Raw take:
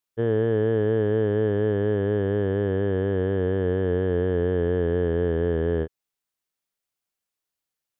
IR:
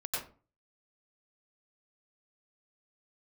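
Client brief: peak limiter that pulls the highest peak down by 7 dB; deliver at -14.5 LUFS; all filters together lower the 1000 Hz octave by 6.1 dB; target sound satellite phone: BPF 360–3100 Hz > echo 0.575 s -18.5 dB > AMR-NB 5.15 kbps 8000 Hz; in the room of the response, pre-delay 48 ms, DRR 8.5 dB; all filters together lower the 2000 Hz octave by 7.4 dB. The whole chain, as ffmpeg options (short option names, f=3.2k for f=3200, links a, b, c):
-filter_complex "[0:a]equalizer=f=1k:t=o:g=-7.5,equalizer=f=2k:t=o:g=-6,alimiter=limit=-21dB:level=0:latency=1,asplit=2[a][b];[1:a]atrim=start_sample=2205,adelay=48[c];[b][c]afir=irnorm=-1:irlink=0,volume=-12.5dB[d];[a][d]amix=inputs=2:normalize=0,highpass=360,lowpass=3.1k,aecho=1:1:575:0.119,volume=20dB" -ar 8000 -c:a libopencore_amrnb -b:a 5150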